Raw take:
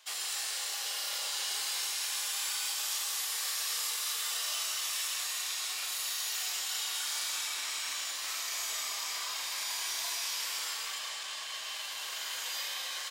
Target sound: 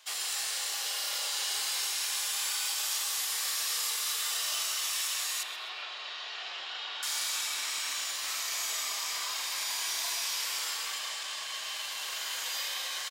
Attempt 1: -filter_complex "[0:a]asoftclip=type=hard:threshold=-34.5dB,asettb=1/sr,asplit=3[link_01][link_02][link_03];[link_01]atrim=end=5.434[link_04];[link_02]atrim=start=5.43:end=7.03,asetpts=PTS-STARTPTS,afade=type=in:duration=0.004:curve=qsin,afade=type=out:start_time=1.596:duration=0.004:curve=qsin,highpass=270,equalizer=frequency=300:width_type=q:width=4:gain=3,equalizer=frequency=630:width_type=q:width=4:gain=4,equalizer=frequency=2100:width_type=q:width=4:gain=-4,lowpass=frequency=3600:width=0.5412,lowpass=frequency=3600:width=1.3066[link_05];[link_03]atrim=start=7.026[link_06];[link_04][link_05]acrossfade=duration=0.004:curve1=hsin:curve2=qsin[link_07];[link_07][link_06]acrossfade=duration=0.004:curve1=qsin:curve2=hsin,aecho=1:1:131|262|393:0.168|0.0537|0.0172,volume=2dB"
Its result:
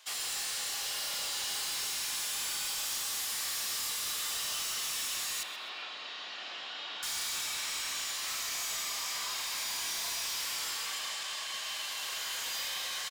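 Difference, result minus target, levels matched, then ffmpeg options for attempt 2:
hard clipping: distortion +21 dB
-filter_complex "[0:a]asoftclip=type=hard:threshold=-26dB,asettb=1/sr,asplit=3[link_01][link_02][link_03];[link_01]atrim=end=5.434[link_04];[link_02]atrim=start=5.43:end=7.03,asetpts=PTS-STARTPTS,afade=type=in:duration=0.004:curve=qsin,afade=type=out:start_time=1.596:duration=0.004:curve=qsin,highpass=270,equalizer=frequency=300:width_type=q:width=4:gain=3,equalizer=frequency=630:width_type=q:width=4:gain=4,equalizer=frequency=2100:width_type=q:width=4:gain=-4,lowpass=frequency=3600:width=0.5412,lowpass=frequency=3600:width=1.3066[link_05];[link_03]atrim=start=7.026[link_06];[link_04][link_05]acrossfade=duration=0.004:curve1=hsin:curve2=qsin[link_07];[link_07][link_06]acrossfade=duration=0.004:curve1=qsin:curve2=hsin,aecho=1:1:131|262|393:0.168|0.0537|0.0172,volume=2dB"

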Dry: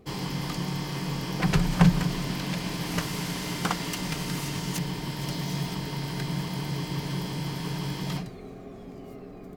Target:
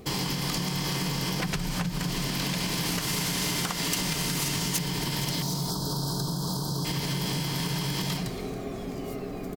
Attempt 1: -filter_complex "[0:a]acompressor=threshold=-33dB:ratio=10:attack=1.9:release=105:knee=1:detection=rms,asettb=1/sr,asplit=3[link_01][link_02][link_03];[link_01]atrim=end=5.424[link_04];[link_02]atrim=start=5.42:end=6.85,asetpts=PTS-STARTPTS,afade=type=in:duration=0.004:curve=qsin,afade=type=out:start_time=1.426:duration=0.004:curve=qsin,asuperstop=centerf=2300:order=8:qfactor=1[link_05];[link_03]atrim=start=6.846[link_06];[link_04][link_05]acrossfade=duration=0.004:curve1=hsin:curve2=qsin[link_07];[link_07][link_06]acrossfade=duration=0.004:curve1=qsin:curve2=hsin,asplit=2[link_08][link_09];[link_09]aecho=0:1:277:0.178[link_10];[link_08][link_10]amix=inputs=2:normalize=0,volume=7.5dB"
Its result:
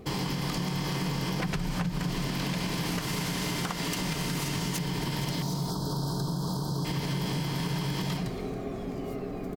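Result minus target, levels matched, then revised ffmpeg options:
8,000 Hz band −5.0 dB
-filter_complex "[0:a]acompressor=threshold=-33dB:ratio=10:attack=1.9:release=105:knee=1:detection=rms,highshelf=frequency=3100:gain=8.5,asettb=1/sr,asplit=3[link_01][link_02][link_03];[link_01]atrim=end=5.424[link_04];[link_02]atrim=start=5.42:end=6.85,asetpts=PTS-STARTPTS,afade=type=in:duration=0.004:curve=qsin,afade=type=out:start_time=1.426:duration=0.004:curve=qsin,asuperstop=centerf=2300:order=8:qfactor=1[link_05];[link_03]atrim=start=6.846[link_06];[link_04][link_05]acrossfade=duration=0.004:curve1=hsin:curve2=qsin[link_07];[link_07][link_06]acrossfade=duration=0.004:curve1=qsin:curve2=hsin,asplit=2[link_08][link_09];[link_09]aecho=0:1:277:0.178[link_10];[link_08][link_10]amix=inputs=2:normalize=0,volume=7.5dB"

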